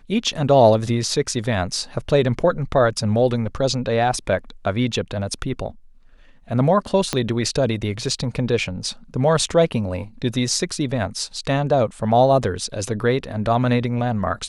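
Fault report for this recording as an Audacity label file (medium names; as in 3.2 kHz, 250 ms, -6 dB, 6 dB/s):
7.130000	7.130000	pop -7 dBFS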